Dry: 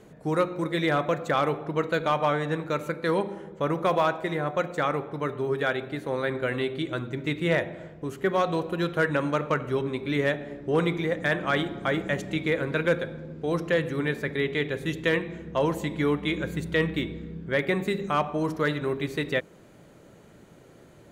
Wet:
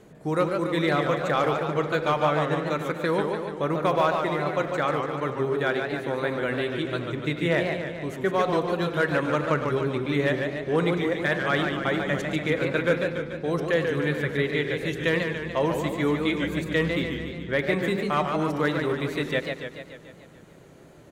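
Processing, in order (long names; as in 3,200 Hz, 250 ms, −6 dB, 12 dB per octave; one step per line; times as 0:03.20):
far-end echo of a speakerphone 100 ms, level −13 dB
feedback echo with a swinging delay time 145 ms, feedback 60%, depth 152 cents, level −5.5 dB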